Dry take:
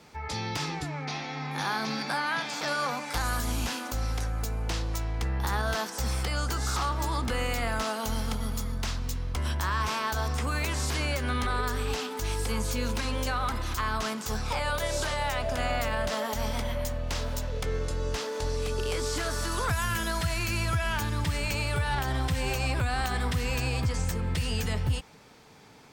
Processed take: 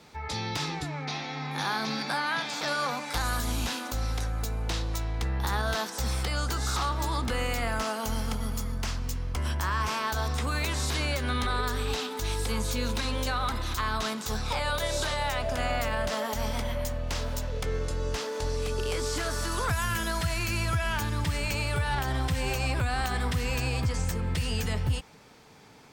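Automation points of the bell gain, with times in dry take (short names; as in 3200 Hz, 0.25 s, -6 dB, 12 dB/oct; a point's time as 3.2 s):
bell 3800 Hz 0.22 oct
7.1 s +5 dB
7.87 s -4.5 dB
9.83 s -4.5 dB
10.33 s +7 dB
15.07 s +7 dB
15.58 s -0.5 dB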